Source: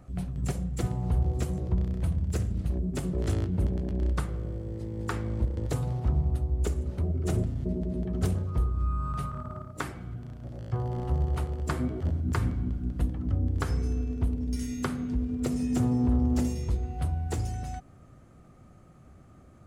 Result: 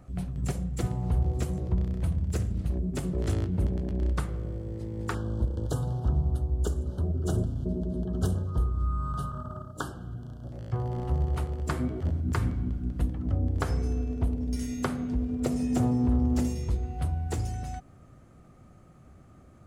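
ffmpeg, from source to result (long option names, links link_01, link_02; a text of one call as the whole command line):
ffmpeg -i in.wav -filter_complex "[0:a]asettb=1/sr,asplit=3[link_01][link_02][link_03];[link_01]atrim=end=5.144[link_04];[link_02]atrim=start=5.14:end=10.52,asetpts=PTS-STARTPTS,afade=type=in:duration=0.004:curve=qsin,afade=type=out:start_time=5.376:duration=0.004:curve=qsin,asuperstop=centerf=2200:order=20:qfactor=1.9[link_05];[link_03]atrim=start=10.516[link_06];[link_04][link_05]acrossfade=duration=0.004:curve1=hsin:curve2=qsin[link_07];[link_07][link_06]acrossfade=duration=0.004:curve1=qsin:curve2=hsin,asettb=1/sr,asplit=3[link_08][link_09][link_10];[link_08]atrim=end=13.254[link_11];[link_09]atrim=start=13.25:end=15.91,asetpts=PTS-STARTPTS,afade=type=in:duration=0.004:curve=qsin,afade=type=out:start_time=2.656:duration=0.004:curve=qsin,equalizer=frequency=650:width=1.5:gain=6[link_12];[link_10]atrim=start=15.906[link_13];[link_11][link_12]acrossfade=duration=0.004:curve1=hsin:curve2=qsin[link_14];[link_14][link_13]acrossfade=duration=0.004:curve1=qsin:curve2=hsin" out.wav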